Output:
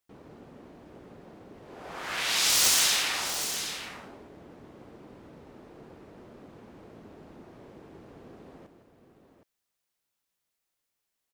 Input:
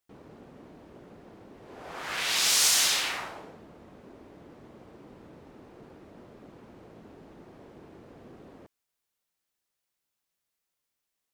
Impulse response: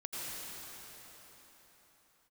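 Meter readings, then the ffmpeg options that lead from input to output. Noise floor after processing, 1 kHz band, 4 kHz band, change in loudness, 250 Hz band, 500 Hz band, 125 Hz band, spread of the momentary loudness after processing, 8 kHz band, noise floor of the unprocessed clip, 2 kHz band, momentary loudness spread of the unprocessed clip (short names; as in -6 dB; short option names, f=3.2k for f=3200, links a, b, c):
-83 dBFS, +1.0 dB, +0.5 dB, -0.5 dB, +1.0 dB, +1.0 dB, +1.5 dB, 19 LU, +0.5 dB, -84 dBFS, +0.5 dB, 21 LU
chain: -af "aeval=exprs='(mod(4.73*val(0)+1,2)-1)/4.73':c=same,aecho=1:1:160|767:0.299|0.335"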